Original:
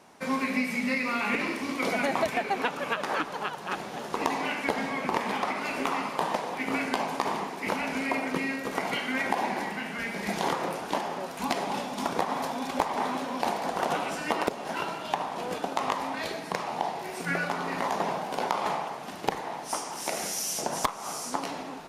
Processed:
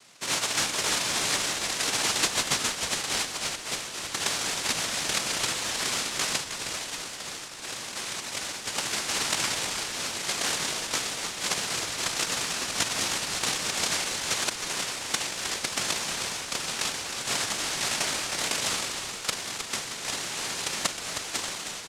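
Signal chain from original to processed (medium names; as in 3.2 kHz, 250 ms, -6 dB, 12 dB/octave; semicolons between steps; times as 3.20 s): 6.43–8.67 s: peaking EQ 910 Hz -12 dB 2.7 oct; noise-vocoded speech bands 1; frequency-shifting echo 313 ms, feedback 36%, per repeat -84 Hz, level -8 dB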